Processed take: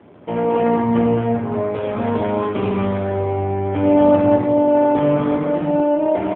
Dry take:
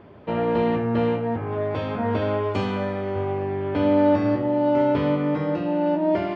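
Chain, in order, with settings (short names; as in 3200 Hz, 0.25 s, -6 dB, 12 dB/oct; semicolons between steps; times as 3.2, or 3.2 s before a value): loudspeakers at several distances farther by 28 m -7 dB, 74 m -4 dB, 92 m -8 dB; gain +3 dB; AMR-NB 7.4 kbps 8000 Hz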